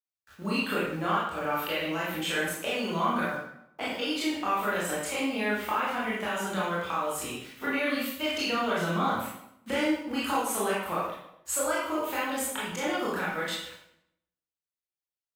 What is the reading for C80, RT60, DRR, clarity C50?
3.5 dB, 0.75 s, -8.0 dB, -0.5 dB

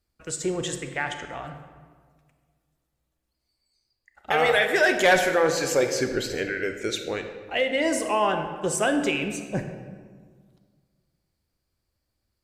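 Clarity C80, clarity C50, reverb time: 9.0 dB, 7.5 dB, 1.7 s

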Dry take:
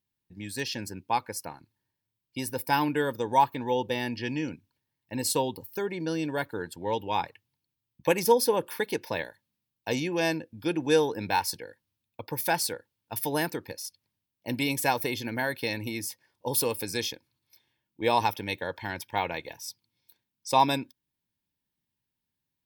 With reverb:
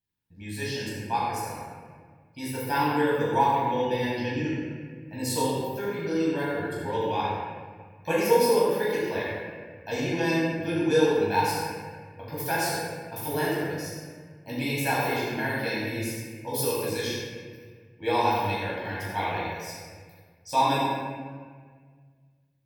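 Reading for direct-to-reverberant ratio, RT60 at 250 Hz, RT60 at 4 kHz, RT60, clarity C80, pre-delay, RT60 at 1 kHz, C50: -8.5 dB, 2.1 s, 1.1 s, 1.7 s, -0.5 dB, 12 ms, 1.5 s, -2.5 dB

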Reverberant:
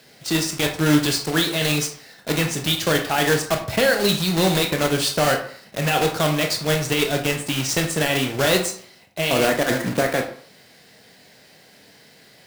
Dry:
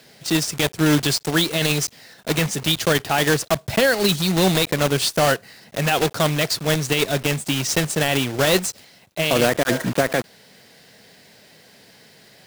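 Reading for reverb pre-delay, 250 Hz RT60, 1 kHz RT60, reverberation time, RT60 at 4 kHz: 18 ms, 0.50 s, 0.55 s, 0.55 s, 0.35 s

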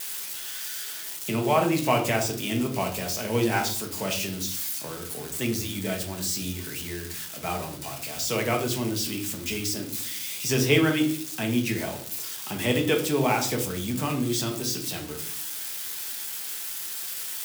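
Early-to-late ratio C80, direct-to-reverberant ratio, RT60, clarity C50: 13.5 dB, 1.5 dB, 0.50 s, 9.5 dB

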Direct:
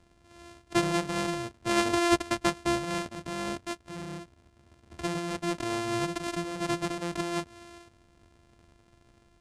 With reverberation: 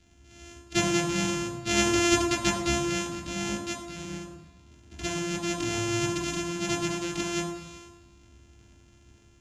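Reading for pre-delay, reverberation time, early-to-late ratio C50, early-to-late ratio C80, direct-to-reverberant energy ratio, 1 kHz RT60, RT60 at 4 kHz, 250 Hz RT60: 9 ms, 1.0 s, 6.5 dB, 8.5 dB, 0.5 dB, 1.1 s, 1.1 s, 1.0 s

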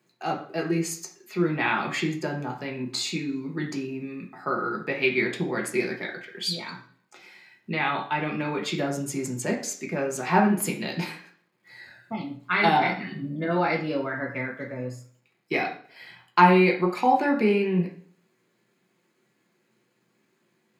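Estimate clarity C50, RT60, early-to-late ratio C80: 8.5 dB, 0.55 s, 13.0 dB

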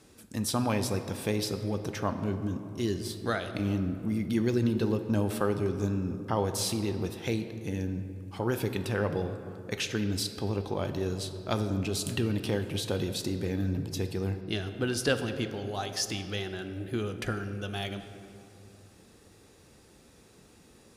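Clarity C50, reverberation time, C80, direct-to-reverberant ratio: 9.0 dB, 2.6 s, 10.0 dB, 8.0 dB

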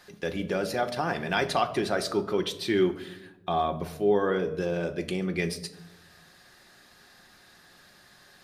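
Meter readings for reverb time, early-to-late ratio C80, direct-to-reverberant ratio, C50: 0.95 s, 16.0 dB, 6.0 dB, 13.5 dB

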